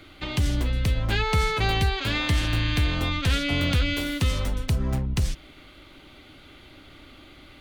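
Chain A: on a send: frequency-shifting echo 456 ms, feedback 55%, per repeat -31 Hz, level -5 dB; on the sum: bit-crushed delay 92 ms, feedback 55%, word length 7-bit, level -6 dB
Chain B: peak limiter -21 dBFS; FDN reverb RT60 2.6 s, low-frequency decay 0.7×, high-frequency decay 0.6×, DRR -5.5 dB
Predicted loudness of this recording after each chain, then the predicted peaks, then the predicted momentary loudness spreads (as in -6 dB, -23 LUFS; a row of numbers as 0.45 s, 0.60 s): -23.0 LUFS, -24.0 LUFS; -6.5 dBFS, -10.0 dBFS; 17 LU, 20 LU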